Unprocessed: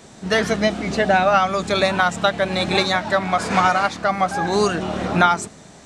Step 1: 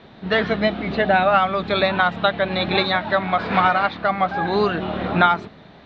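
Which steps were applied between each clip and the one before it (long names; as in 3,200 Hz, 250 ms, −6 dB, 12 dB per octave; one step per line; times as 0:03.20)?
elliptic low-pass filter 3,900 Hz, stop band 80 dB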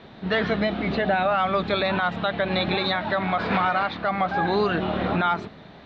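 brickwall limiter −13.5 dBFS, peak gain reduction 11 dB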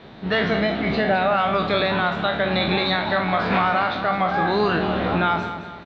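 peak hold with a decay on every bin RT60 0.47 s
on a send: repeating echo 212 ms, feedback 42%, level −11 dB
on the sum: level +1 dB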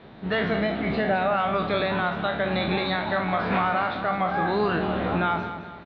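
high-frequency loss of the air 170 metres
level −3 dB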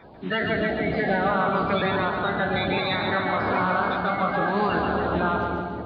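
spectral magnitudes quantised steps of 30 dB
echo with a time of its own for lows and highs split 590 Hz, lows 373 ms, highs 141 ms, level −4.5 dB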